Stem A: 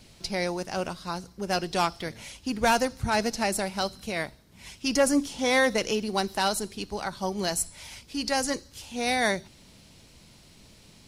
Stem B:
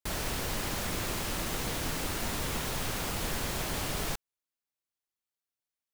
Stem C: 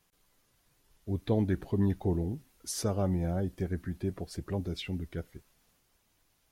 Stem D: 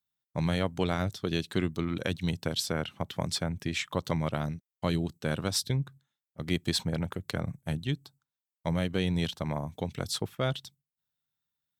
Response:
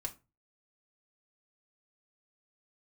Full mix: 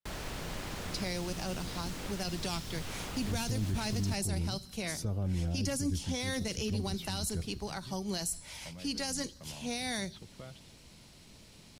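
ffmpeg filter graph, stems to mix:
-filter_complex "[0:a]adelay=700,volume=0.794[s0];[1:a]highshelf=f=8900:g=-12,volume=0.562[s1];[2:a]lowshelf=f=110:g=11,adelay=2200,volume=0.596[s2];[3:a]lowpass=f=3200:w=0.5412,lowpass=f=3200:w=1.3066,acompressor=threshold=0.0141:ratio=6,asoftclip=type=tanh:threshold=0.0237,volume=0.501[s3];[s0][s1][s2][s3]amix=inputs=4:normalize=0,acrossover=split=250|3000[s4][s5][s6];[s5]acompressor=threshold=0.00891:ratio=3[s7];[s4][s7][s6]amix=inputs=3:normalize=0,alimiter=level_in=1.06:limit=0.0631:level=0:latency=1:release=18,volume=0.944"

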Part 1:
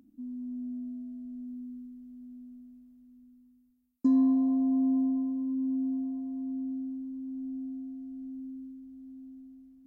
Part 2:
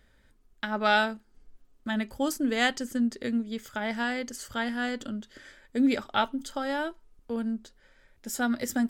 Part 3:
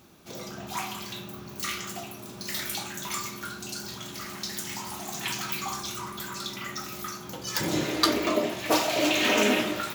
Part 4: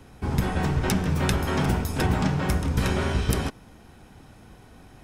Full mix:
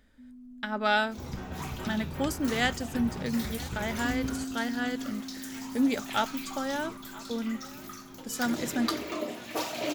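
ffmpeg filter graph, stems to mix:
-filter_complex "[0:a]volume=0.299[s0];[1:a]volume=0.794,asplit=2[s1][s2];[s2]volume=0.0891[s3];[2:a]aphaser=in_gain=1:out_gain=1:delay=4.1:decay=0.28:speed=1:type=sinusoidal,adelay=850,volume=0.355[s4];[3:a]lowpass=5300,adelay=950,volume=0.2[s5];[s3]aecho=0:1:982:1[s6];[s0][s1][s4][s5][s6]amix=inputs=5:normalize=0"

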